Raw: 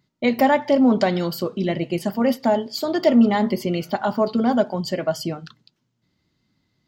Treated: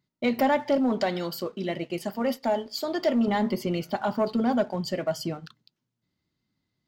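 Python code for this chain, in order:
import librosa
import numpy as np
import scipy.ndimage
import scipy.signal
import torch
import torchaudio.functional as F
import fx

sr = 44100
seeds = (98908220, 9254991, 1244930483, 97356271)

y = fx.low_shelf(x, sr, hz=210.0, db=-10.0, at=(0.78, 3.28))
y = fx.leveller(y, sr, passes=1)
y = y * librosa.db_to_amplitude(-8.0)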